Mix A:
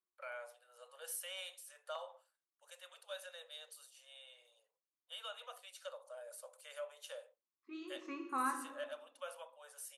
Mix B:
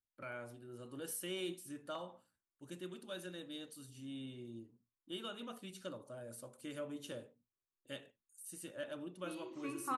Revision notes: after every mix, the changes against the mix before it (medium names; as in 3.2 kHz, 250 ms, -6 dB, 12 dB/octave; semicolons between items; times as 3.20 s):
first voice: remove steep high-pass 500 Hz 96 dB/octave; second voice: entry +1.55 s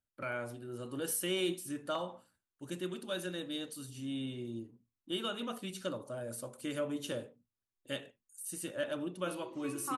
first voice +8.0 dB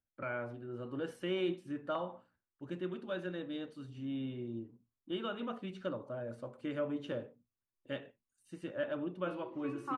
master: add low-pass 2.1 kHz 12 dB/octave